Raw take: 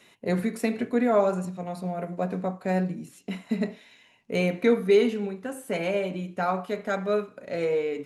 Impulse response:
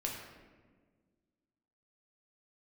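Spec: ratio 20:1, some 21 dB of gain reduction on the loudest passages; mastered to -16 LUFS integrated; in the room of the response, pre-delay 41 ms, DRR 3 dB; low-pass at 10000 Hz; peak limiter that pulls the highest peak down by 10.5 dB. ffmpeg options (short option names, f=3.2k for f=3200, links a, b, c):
-filter_complex "[0:a]lowpass=10k,acompressor=threshold=-36dB:ratio=20,alimiter=level_in=10dB:limit=-24dB:level=0:latency=1,volume=-10dB,asplit=2[a][b];[1:a]atrim=start_sample=2205,adelay=41[c];[b][c]afir=irnorm=-1:irlink=0,volume=-5dB[d];[a][d]amix=inputs=2:normalize=0,volume=26dB"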